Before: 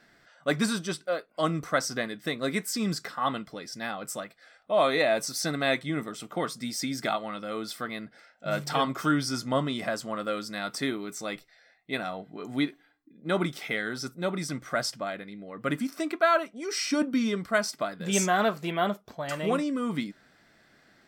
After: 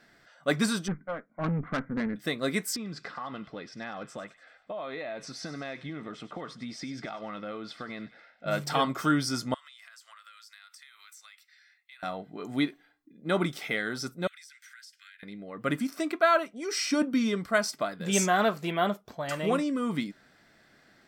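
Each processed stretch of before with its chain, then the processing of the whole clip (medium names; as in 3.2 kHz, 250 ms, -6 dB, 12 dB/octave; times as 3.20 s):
0.88–2.16 s: brick-wall FIR low-pass 2.4 kHz + resonant low shelf 310 Hz +7 dB, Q 3 + valve stage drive 25 dB, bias 0.65
2.76–8.47 s: low-pass 3.2 kHz + compression 12:1, threshold -33 dBFS + feedback echo behind a high-pass 97 ms, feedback 52%, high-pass 2 kHz, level -12 dB
9.54–12.03 s: high-pass 1.4 kHz 24 dB/octave + compression 12:1, threshold -48 dBFS
14.27–15.23 s: steep high-pass 1.5 kHz 72 dB/octave + compression 8:1, threshold -48 dBFS
whole clip: none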